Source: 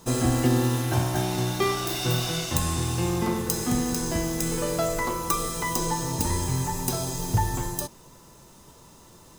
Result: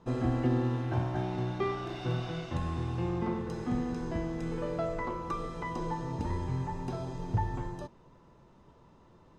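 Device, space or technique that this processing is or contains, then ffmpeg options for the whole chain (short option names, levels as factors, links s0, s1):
phone in a pocket: -af "lowpass=3200,highshelf=f=2300:g=-9,volume=0.501"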